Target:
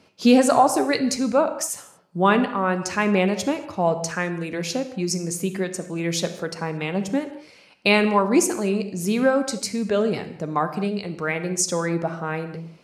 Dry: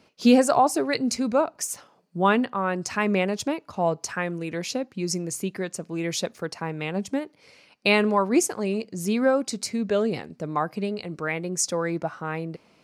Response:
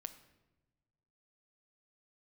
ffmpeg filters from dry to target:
-filter_complex "[1:a]atrim=start_sample=2205,atrim=end_sample=6615,asetrate=27342,aresample=44100[link_01];[0:a][link_01]afir=irnorm=-1:irlink=0,volume=4.5dB"

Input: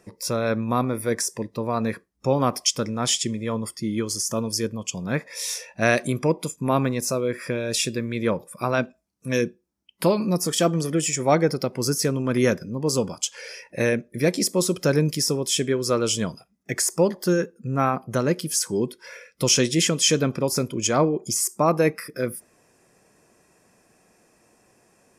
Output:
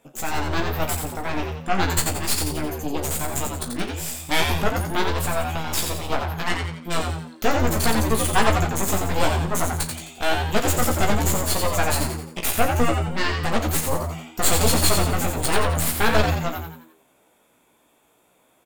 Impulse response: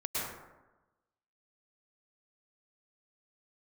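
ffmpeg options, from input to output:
-filter_complex "[0:a]aeval=exprs='0.708*(cos(1*acos(clip(val(0)/0.708,-1,1)))-cos(1*PI/2))+0.178*(cos(8*acos(clip(val(0)/0.708,-1,1)))-cos(8*PI/2))':channel_layout=same,flanger=delay=18:depth=5.4:speed=0.27,asetrate=59535,aresample=44100,asplit=2[link_01][link_02];[link_02]adelay=36,volume=-12dB[link_03];[link_01][link_03]amix=inputs=2:normalize=0,asplit=2[link_04][link_05];[link_05]asplit=5[link_06][link_07][link_08][link_09][link_10];[link_06]adelay=87,afreqshift=80,volume=-5dB[link_11];[link_07]adelay=174,afreqshift=160,volume=-12.3dB[link_12];[link_08]adelay=261,afreqshift=240,volume=-19.7dB[link_13];[link_09]adelay=348,afreqshift=320,volume=-27dB[link_14];[link_10]adelay=435,afreqshift=400,volume=-34.3dB[link_15];[link_11][link_12][link_13][link_14][link_15]amix=inputs=5:normalize=0[link_16];[link_04][link_16]amix=inputs=2:normalize=0"

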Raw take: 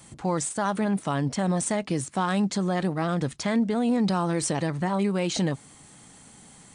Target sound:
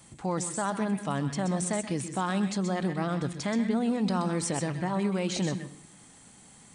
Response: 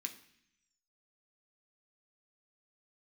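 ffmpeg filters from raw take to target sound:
-filter_complex "[0:a]asplit=2[link_01][link_02];[1:a]atrim=start_sample=2205,adelay=127[link_03];[link_02][link_03]afir=irnorm=-1:irlink=0,volume=-5.5dB[link_04];[link_01][link_04]amix=inputs=2:normalize=0,volume=-4dB"

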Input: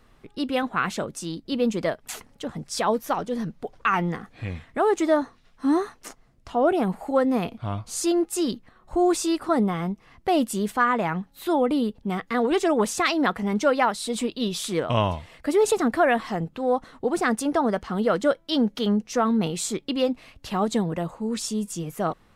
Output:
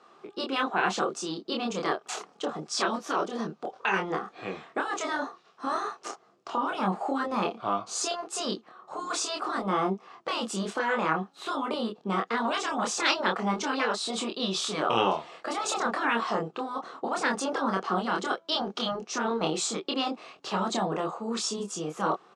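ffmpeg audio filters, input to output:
ffmpeg -i in.wav -filter_complex "[0:a]highpass=frequency=210:width=0.5412,highpass=frequency=210:width=1.3066,equalizer=frequency=250:width_type=q:width=4:gain=-10,equalizer=frequency=380:width_type=q:width=4:gain=8,equalizer=frequency=740:width_type=q:width=4:gain=7,equalizer=frequency=1200:width_type=q:width=4:gain=9,equalizer=frequency=2000:width_type=q:width=4:gain=-6,lowpass=frequency=7400:width=0.5412,lowpass=frequency=7400:width=1.3066,afftfilt=real='re*lt(hypot(re,im),0.398)':imag='im*lt(hypot(re,im),0.398)':win_size=1024:overlap=0.75,asplit=2[link_01][link_02];[link_02]adelay=26,volume=-3dB[link_03];[link_01][link_03]amix=inputs=2:normalize=0" out.wav

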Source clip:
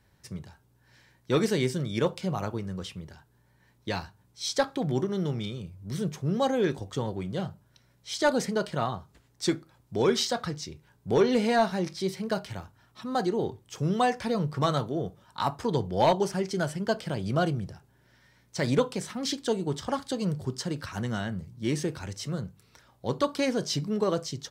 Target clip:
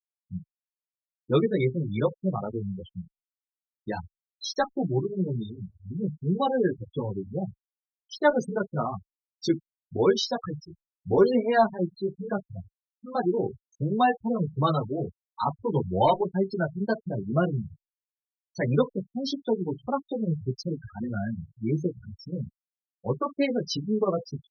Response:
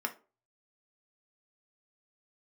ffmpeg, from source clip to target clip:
-filter_complex "[0:a]afftfilt=real='re*gte(hypot(re,im),0.0631)':imag='im*gte(hypot(re,im),0.0631)':win_size=1024:overlap=0.75,asplit=2[link_01][link_02];[link_02]adelay=8.8,afreqshift=2.7[link_03];[link_01][link_03]amix=inputs=2:normalize=1,volume=4.5dB"

